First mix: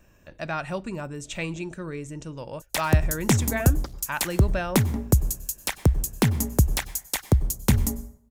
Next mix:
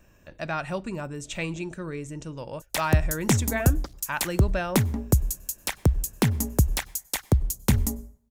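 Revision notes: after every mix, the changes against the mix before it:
background: send −8.5 dB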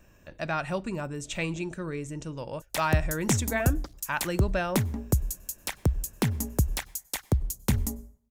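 background −4.0 dB

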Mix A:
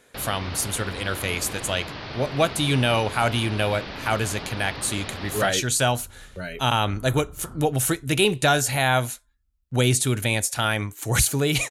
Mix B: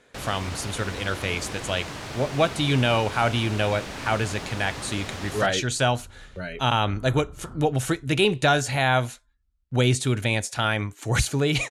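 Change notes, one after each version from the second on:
first sound: remove Butterworth low-pass 4,900 Hz 48 dB per octave
master: add high-frequency loss of the air 70 metres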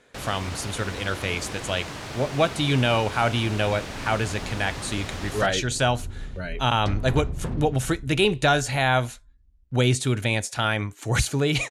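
second sound: remove transistor ladder low-pass 1,400 Hz, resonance 85%

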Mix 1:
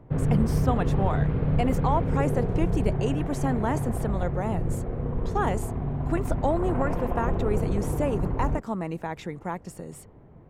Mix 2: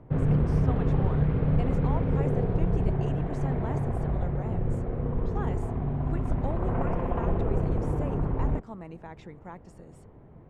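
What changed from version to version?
speech −11.0 dB
master: add high-frequency loss of the air 55 metres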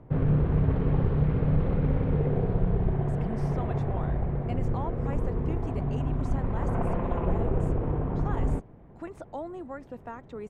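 speech: entry +2.90 s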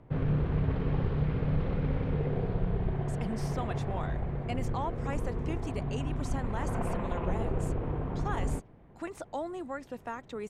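background −5.0 dB
master: add high-shelf EQ 2,100 Hz +11.5 dB

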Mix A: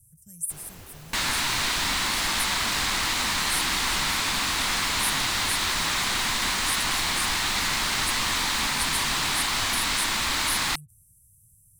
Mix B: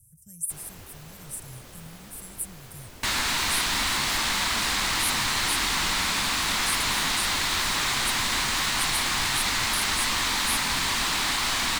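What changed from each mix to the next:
second sound: entry +1.90 s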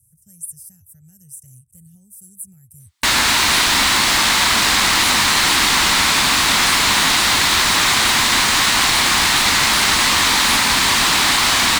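first sound: muted
second sound +11.0 dB
master: add high-pass filter 67 Hz 6 dB per octave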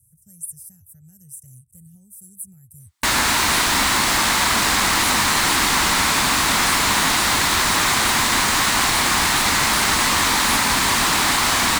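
master: add parametric band 3,500 Hz −6 dB 1.8 octaves

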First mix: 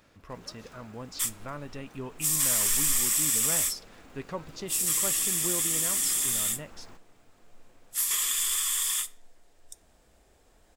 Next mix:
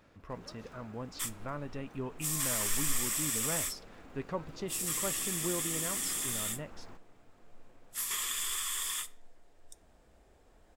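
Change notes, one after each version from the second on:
master: add high-shelf EQ 2,900 Hz −9 dB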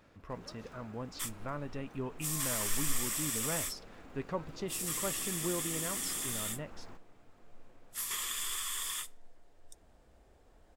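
second sound: send −10.0 dB

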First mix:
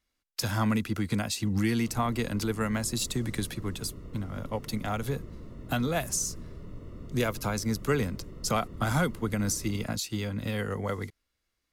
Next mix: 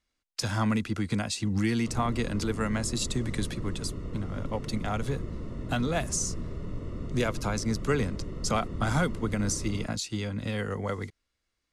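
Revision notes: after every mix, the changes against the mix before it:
background +7.0 dB
master: add low-pass filter 9,600 Hz 24 dB per octave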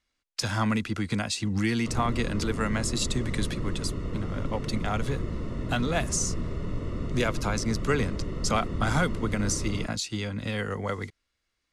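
background +4.0 dB
master: add parametric band 2,400 Hz +3.5 dB 2.9 octaves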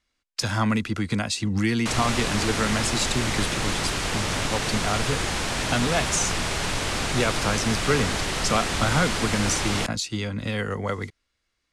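speech +3.0 dB
background: remove moving average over 55 samples

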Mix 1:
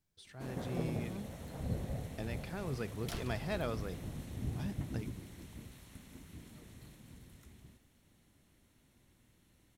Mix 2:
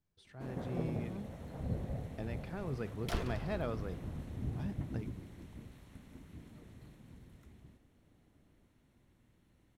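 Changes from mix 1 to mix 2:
second sound +8.0 dB
master: add high-shelf EQ 3,000 Hz −11.5 dB

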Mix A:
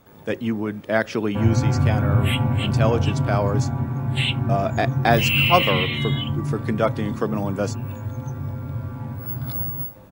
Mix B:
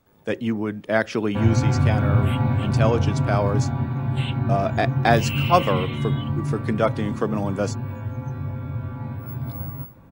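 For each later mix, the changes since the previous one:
first sound −11.0 dB
second sound: remove Gaussian smoothing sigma 3.1 samples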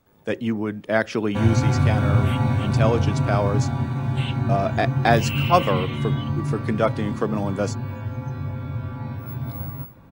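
second sound: remove high-frequency loss of the air 270 metres

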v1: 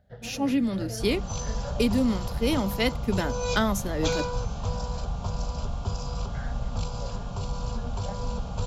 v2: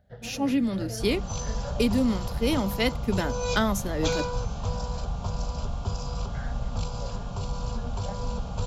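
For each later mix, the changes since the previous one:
nothing changed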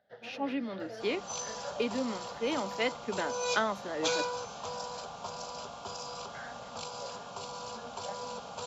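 speech: add high-frequency loss of the air 320 metres
master: add Bessel high-pass filter 540 Hz, order 2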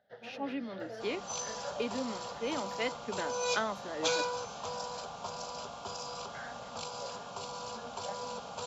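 speech −3.5 dB

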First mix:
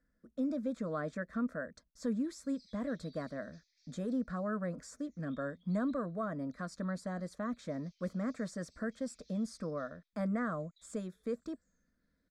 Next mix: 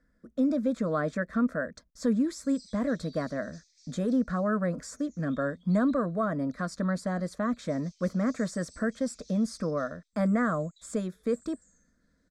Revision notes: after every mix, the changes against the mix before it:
speech +8.5 dB
background: remove high-frequency loss of the air 240 metres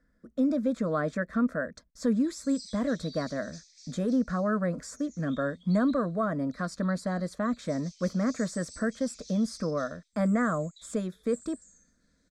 background +7.5 dB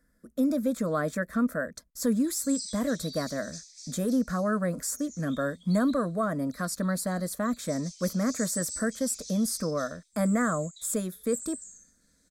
master: remove high-frequency loss of the air 120 metres

